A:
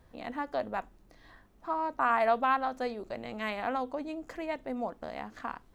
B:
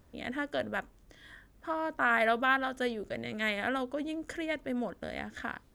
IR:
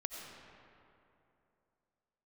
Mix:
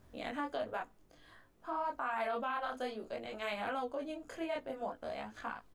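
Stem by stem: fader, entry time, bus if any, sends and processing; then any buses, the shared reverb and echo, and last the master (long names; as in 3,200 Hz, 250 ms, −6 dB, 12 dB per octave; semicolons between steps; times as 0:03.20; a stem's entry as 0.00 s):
−1.0 dB, 0.00 s, no send, chorus effect 1.3 Hz, delay 16 ms, depth 3.9 ms
+2.0 dB, 0.6 ms, polarity flipped, no send, automatic ducking −7 dB, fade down 0.80 s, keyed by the first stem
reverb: not used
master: multi-voice chorus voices 2, 0.55 Hz, delay 23 ms, depth 4.8 ms; brickwall limiter −28 dBFS, peak gain reduction 10.5 dB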